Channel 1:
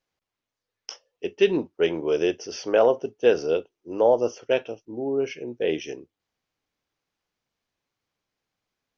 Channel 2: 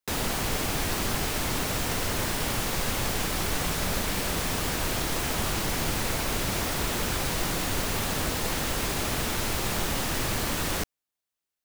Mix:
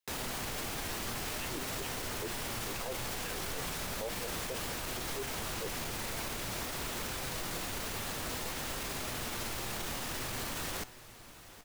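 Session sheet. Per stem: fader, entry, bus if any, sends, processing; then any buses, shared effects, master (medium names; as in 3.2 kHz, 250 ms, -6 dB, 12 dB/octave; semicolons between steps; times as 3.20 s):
-9.5 dB, 0.00 s, no send, no echo send, LFO high-pass saw down 4.4 Hz 280–4000 Hz
+2.0 dB, 0.00 s, no send, echo send -22 dB, bass shelf 400 Hz -3.5 dB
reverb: none
echo: feedback delay 773 ms, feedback 48%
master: flange 0.57 Hz, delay 7.5 ms, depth 1.4 ms, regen +83%; peak limiter -28.5 dBFS, peak gain reduction 13 dB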